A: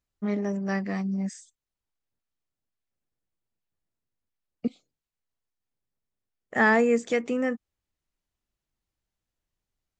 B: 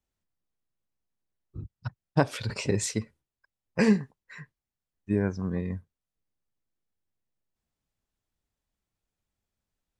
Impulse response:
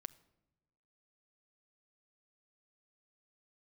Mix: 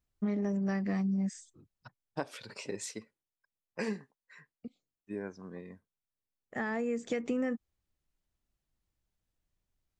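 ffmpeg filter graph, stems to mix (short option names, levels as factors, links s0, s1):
-filter_complex "[0:a]acompressor=threshold=0.0708:ratio=6,lowshelf=f=280:g=7,volume=0.708[s0];[1:a]highpass=260,volume=0.335,asplit=2[s1][s2];[s2]apad=whole_len=440882[s3];[s0][s3]sidechaincompress=threshold=0.00178:ratio=5:attack=8.8:release=1370[s4];[s4][s1]amix=inputs=2:normalize=0,acompressor=threshold=0.0398:ratio=6"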